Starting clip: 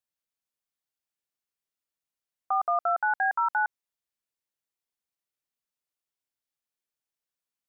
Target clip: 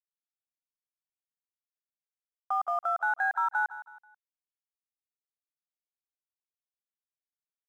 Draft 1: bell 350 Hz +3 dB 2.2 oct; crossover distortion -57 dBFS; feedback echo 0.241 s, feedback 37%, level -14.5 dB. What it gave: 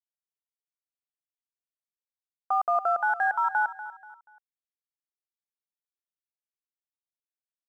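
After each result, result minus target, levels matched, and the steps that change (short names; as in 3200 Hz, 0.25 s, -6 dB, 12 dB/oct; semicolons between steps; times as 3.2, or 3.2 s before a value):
echo 79 ms late; 250 Hz band +6.0 dB
change: feedback echo 0.162 s, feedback 37%, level -14.5 dB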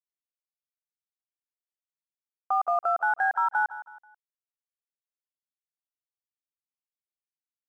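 250 Hz band +6.5 dB
change: bell 350 Hz -8 dB 2.2 oct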